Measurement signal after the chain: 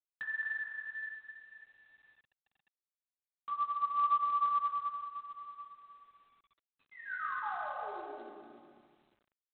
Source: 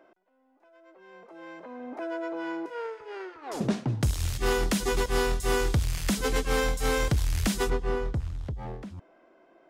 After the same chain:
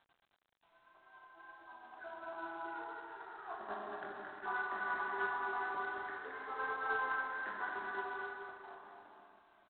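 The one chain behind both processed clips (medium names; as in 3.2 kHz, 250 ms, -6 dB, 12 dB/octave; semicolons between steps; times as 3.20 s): random holes in the spectrogram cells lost 35%; Chebyshev band-pass 420–1700 Hz, order 3; dynamic bell 520 Hz, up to +4 dB, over -43 dBFS, Q 1.8; tremolo 9.4 Hz, depth 49%; static phaser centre 1.2 kHz, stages 4; chorus 1.9 Hz, delay 19.5 ms, depth 2 ms; bouncing-ball echo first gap 220 ms, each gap 0.6×, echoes 5; Schroeder reverb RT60 2.1 s, combs from 30 ms, DRR -1 dB; G.726 24 kbps 8 kHz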